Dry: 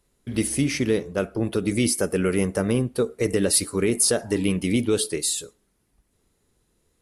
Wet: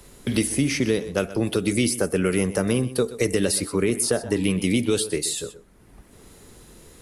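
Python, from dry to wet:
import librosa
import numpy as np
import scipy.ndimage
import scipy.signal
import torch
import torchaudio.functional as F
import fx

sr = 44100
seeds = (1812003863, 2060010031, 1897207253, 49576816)

y = x + 10.0 ** (-17.0 / 20.0) * np.pad(x, (int(125 * sr / 1000.0), 0))[:len(x)]
y = fx.band_squash(y, sr, depth_pct=70)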